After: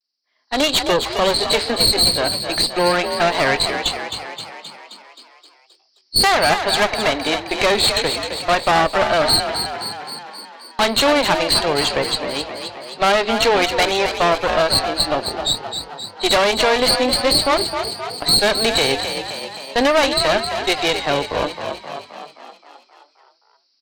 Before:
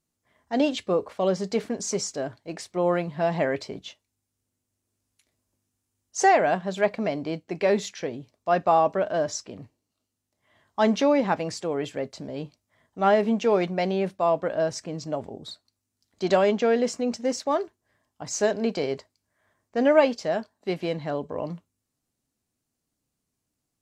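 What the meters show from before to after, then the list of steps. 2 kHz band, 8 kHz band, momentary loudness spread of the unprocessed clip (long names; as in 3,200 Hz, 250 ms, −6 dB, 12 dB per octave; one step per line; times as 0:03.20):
+13.5 dB, +11.5 dB, 15 LU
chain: hearing-aid frequency compression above 3,800 Hz 4 to 1
Butterworth high-pass 220 Hz 48 dB per octave
noise gate −40 dBFS, range −7 dB
spectral tilt +4.5 dB per octave
downward compressor 2 to 1, threshold −25 dBFS, peak gain reduction 6.5 dB
harmonic generator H 4 −11 dB, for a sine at −12 dBFS
pitch vibrato 0.37 Hz 28 cents
tube saturation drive 25 dB, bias 0.55
on a send: echo with shifted repeats 263 ms, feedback 61%, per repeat +46 Hz, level −8 dB
on the sum: automatic gain control gain up to 15 dB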